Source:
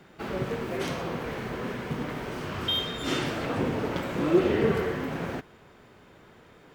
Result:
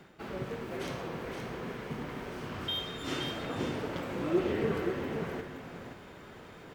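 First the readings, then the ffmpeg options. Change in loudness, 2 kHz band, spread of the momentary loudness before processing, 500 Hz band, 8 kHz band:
-6.5 dB, -6.0 dB, 10 LU, -6.0 dB, -6.0 dB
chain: -af "areverse,acompressor=mode=upward:threshold=-32dB:ratio=2.5,areverse,aecho=1:1:522:0.473,volume=-7dB"

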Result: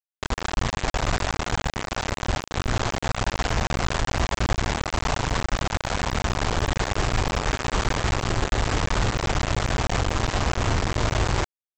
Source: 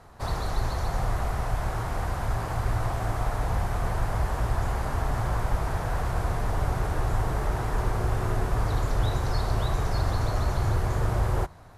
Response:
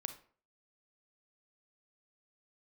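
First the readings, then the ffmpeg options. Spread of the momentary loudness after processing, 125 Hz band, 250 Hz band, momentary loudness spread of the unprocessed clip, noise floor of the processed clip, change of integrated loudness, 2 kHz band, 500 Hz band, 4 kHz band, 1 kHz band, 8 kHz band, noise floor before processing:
3 LU, 0.0 dB, +6.0 dB, 3 LU, under -85 dBFS, +3.0 dB, +8.5 dB, +4.0 dB, +12.5 dB, +3.5 dB, +10.5 dB, -32 dBFS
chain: -af "lowpass=f=2.9k:w=0.5412,lowpass=f=2.9k:w=1.3066,aresample=16000,acrusher=bits=3:mix=0:aa=0.000001,aresample=44100"

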